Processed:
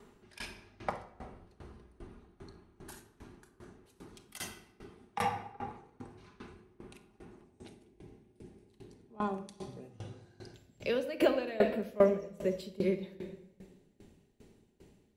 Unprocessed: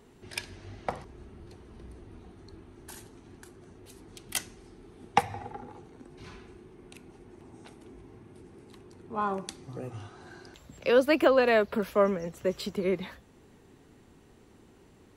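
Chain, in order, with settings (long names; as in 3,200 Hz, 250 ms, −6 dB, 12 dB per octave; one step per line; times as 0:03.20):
parametric band 1,200 Hz +5 dB 0.92 octaves, from 0:07.44 −9.5 dB
rectangular room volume 1,900 cubic metres, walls mixed, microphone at 1.3 metres
tremolo with a ramp in dB decaying 2.5 Hz, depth 21 dB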